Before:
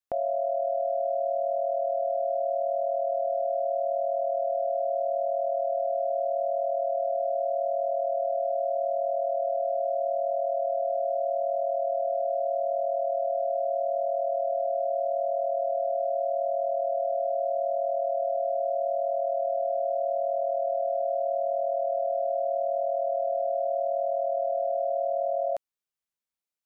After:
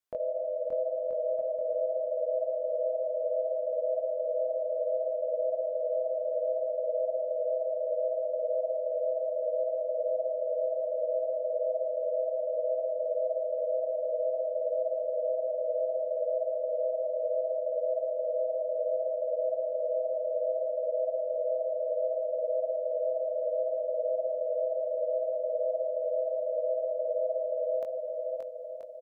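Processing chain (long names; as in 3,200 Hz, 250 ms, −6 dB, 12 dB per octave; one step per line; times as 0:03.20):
brickwall limiter −27 dBFS, peak gain reduction 7 dB
chorus effect 2.1 Hz, delay 16.5 ms, depth 5.2 ms
on a send: bouncing-ball delay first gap 530 ms, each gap 0.7×, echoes 5
on the sum: wrong playback speed 48 kHz file played as 44.1 kHz
level +4 dB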